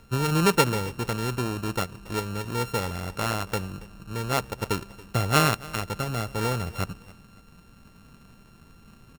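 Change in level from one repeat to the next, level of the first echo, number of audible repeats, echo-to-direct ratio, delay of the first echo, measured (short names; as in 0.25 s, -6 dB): -10.5 dB, -20.5 dB, 2, -20.0 dB, 0.279 s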